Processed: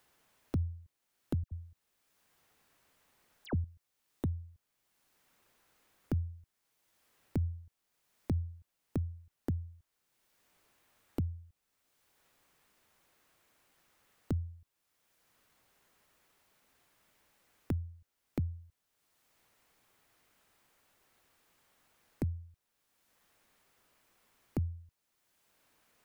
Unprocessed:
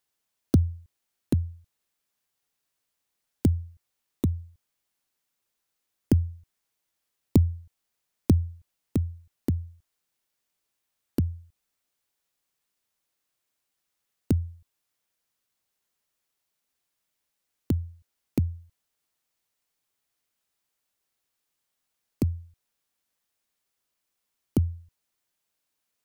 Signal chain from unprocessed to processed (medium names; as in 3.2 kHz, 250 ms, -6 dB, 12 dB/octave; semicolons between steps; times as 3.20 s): peak limiter -17 dBFS, peak gain reduction 9.5 dB; 1.43–3.64 s: phase dispersion lows, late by 82 ms, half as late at 2 kHz; three bands compressed up and down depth 70%; trim -5 dB